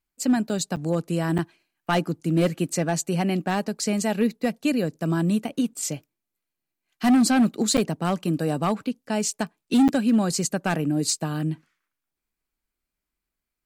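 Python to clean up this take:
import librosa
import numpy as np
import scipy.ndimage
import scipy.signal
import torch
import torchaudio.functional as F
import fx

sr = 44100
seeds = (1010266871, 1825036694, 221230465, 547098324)

y = fx.fix_declip(x, sr, threshold_db=-14.0)
y = fx.fix_interpolate(y, sr, at_s=(0.76, 1.38, 7.77, 9.88), length_ms=8.2)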